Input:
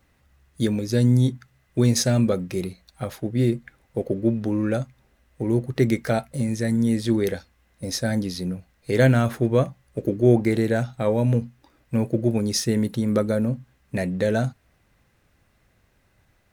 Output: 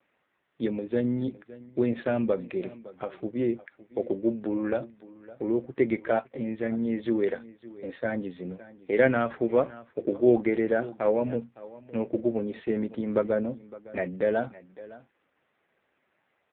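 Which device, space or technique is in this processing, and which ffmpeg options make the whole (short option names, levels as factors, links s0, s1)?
satellite phone: -af "highpass=320,lowpass=3100,aecho=1:1:561:0.119" -ar 8000 -c:a libopencore_amrnb -b:a 5900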